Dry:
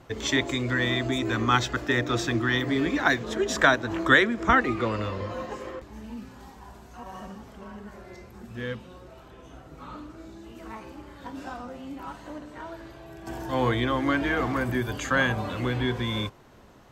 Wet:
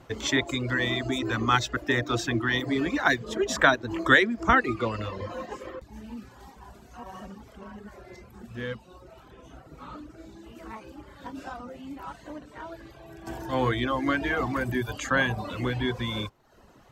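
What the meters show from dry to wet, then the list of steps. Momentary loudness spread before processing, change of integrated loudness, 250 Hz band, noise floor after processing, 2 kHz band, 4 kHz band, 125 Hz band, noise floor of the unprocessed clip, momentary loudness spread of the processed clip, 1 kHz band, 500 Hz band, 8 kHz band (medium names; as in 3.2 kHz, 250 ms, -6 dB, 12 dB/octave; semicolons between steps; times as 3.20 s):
21 LU, -1.0 dB, -1.5 dB, -53 dBFS, -0.5 dB, -1.0 dB, -2.0 dB, -49 dBFS, 22 LU, -0.5 dB, -1.0 dB, -0.5 dB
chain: reverb removal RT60 0.71 s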